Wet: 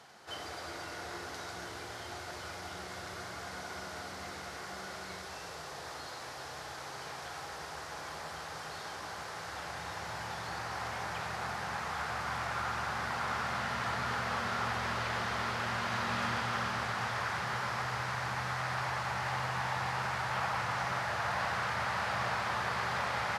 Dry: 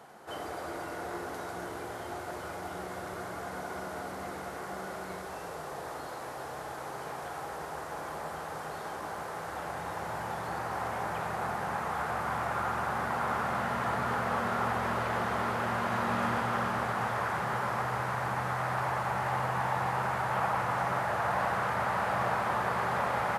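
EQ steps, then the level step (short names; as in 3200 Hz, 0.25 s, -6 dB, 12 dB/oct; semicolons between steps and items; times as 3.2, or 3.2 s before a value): bell 86 Hz +8 dB 1.5 oct; bell 2100 Hz +5.5 dB 2 oct; bell 5000 Hz +14 dB 1.6 oct; -8.5 dB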